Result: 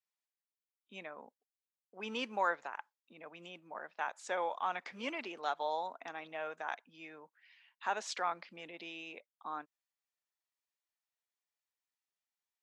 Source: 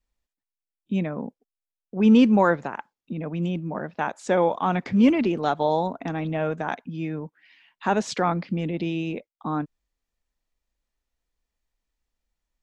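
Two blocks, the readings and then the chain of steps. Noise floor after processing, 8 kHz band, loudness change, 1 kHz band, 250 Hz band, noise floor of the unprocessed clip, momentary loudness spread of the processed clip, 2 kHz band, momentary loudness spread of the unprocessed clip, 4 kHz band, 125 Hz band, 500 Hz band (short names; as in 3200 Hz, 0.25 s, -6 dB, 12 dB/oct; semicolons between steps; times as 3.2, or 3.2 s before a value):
under -85 dBFS, n/a, -15.5 dB, -10.5 dB, -29.0 dB, under -85 dBFS, 17 LU, -8.5 dB, 16 LU, -8.0 dB, -34.5 dB, -16.5 dB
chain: HPF 830 Hz 12 dB/oct; gain -8 dB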